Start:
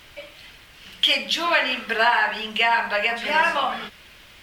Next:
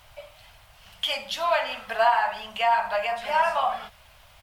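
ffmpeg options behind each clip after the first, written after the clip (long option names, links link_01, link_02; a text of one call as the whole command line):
ffmpeg -i in.wav -af "firequalizer=gain_entry='entry(110,0);entry(180,-11);entry(340,-20);entry(660,3);entry(1800,-10);entry(9700,-3)':delay=0.05:min_phase=1" out.wav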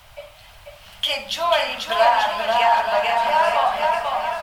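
ffmpeg -i in.wav -filter_complex "[0:a]acrossover=split=180|1200|2100[link_01][link_02][link_03][link_04];[link_03]asoftclip=type=tanh:threshold=-36dB[link_05];[link_01][link_02][link_05][link_04]amix=inputs=4:normalize=0,aecho=1:1:490|882|1196|1446|1647:0.631|0.398|0.251|0.158|0.1,volume=5dB" out.wav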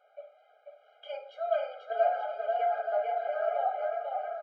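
ffmpeg -i in.wav -af "lowpass=1000,afftfilt=real='re*eq(mod(floor(b*sr/1024/410),2),1)':imag='im*eq(mod(floor(b*sr/1024/410),2),1)':win_size=1024:overlap=0.75,volume=-7dB" out.wav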